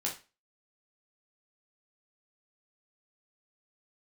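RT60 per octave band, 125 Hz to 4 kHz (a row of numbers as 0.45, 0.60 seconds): 0.30, 0.30, 0.30, 0.30, 0.30, 0.30 seconds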